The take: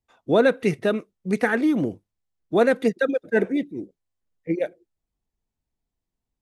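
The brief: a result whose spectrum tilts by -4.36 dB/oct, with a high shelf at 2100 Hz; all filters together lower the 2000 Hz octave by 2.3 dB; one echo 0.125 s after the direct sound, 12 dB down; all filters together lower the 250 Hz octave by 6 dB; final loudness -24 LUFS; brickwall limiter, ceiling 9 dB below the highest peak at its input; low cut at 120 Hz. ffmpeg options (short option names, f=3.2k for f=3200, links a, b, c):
-af "highpass=120,equalizer=f=250:t=o:g=-7.5,equalizer=f=2k:t=o:g=-7,highshelf=f=2.1k:g=7.5,alimiter=limit=-18dB:level=0:latency=1,aecho=1:1:125:0.251,volume=6dB"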